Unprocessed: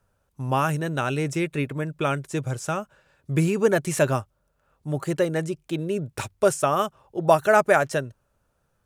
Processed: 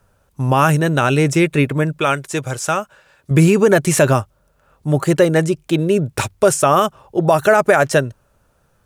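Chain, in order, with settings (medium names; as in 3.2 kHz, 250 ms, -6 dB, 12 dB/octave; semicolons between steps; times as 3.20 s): 1.98–3.31 s: bass shelf 410 Hz -9.5 dB; loudness maximiser +13 dB; trim -2 dB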